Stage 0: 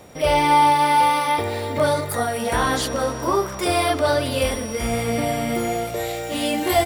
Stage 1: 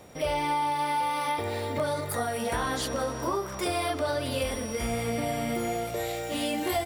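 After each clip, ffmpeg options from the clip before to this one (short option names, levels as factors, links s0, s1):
-af "acompressor=threshold=0.1:ratio=6,volume=0.562"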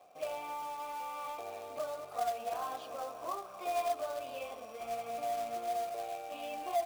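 -filter_complex "[0:a]asplit=3[s0][s1][s2];[s0]bandpass=f=730:t=q:w=8,volume=1[s3];[s1]bandpass=f=1090:t=q:w=8,volume=0.501[s4];[s2]bandpass=f=2440:t=q:w=8,volume=0.355[s5];[s3][s4][s5]amix=inputs=3:normalize=0,acrusher=bits=3:mode=log:mix=0:aa=0.000001"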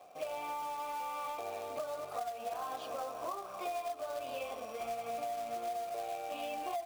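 -af "acompressor=threshold=0.0112:ratio=12,volume=1.58"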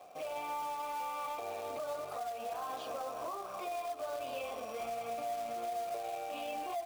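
-af "alimiter=level_in=3.35:limit=0.0631:level=0:latency=1:release=12,volume=0.299,volume=1.26"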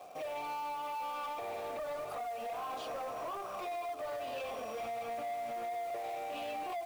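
-af "asoftclip=type=tanh:threshold=0.0119,volume=1.5"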